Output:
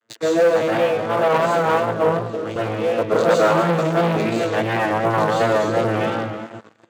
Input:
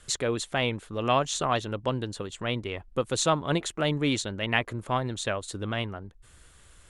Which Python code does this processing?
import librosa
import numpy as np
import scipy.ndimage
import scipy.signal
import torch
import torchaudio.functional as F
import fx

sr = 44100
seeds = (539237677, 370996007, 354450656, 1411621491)

y = fx.vocoder_arp(x, sr, chord='bare fifth', root=45, every_ms=201)
y = fx.high_shelf(y, sr, hz=2400.0, db=-9.5)
y = fx.dereverb_blind(y, sr, rt60_s=0.97)
y = fx.peak_eq(y, sr, hz=1600.0, db=3.5, octaves=0.89)
y = fx.rev_plate(y, sr, seeds[0], rt60_s=1.4, hf_ratio=1.0, predelay_ms=110, drr_db=-8.5)
y = fx.vibrato(y, sr, rate_hz=2.8, depth_cents=60.0)
y = fx.leveller(y, sr, passes=3)
y = scipy.signal.sosfilt(scipy.signal.butter(2, 320.0, 'highpass', fs=sr, output='sos'), y)
y = fx.rider(y, sr, range_db=5, speed_s=2.0)
y = fx.band_widen(y, sr, depth_pct=100, at=(1.28, 2.56))
y = F.gain(torch.from_numpy(y), 1.5).numpy()